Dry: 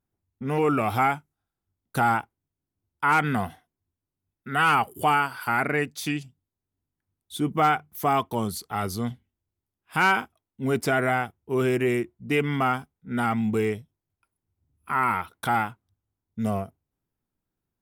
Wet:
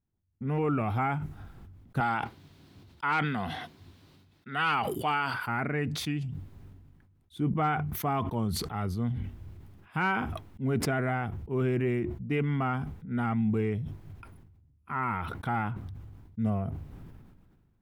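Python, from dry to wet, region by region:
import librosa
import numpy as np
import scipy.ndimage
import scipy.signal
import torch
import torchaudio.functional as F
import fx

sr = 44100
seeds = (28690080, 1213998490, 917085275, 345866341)

y = fx.chain(x, sr, fx.highpass(hz=300.0, slope=6),
    fx.peak_eq(hz=4100.0, db=13.0, octaves=1.1), at=(2.0, 5.34))
y = fx.bass_treble(y, sr, bass_db=9, treble_db=-14)
y = fx.sustainer(y, sr, db_per_s=34.0)
y = F.gain(torch.from_numpy(y), -8.0).numpy()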